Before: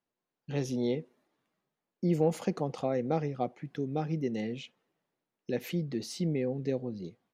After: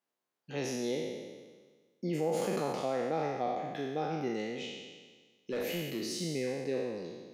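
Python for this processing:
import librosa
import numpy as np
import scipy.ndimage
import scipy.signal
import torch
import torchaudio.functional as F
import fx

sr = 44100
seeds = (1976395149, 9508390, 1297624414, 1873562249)

p1 = fx.spec_trails(x, sr, decay_s=1.48)
p2 = fx.highpass(p1, sr, hz=370.0, slope=6)
p3 = fx.over_compress(p2, sr, threshold_db=-31.0, ratio=-1.0)
p4 = p2 + F.gain(torch.from_numpy(p3), -3.0).numpy()
p5 = fx.overload_stage(p4, sr, gain_db=23.5, at=(4.49, 6.12))
y = F.gain(torch.from_numpy(p5), -6.0).numpy()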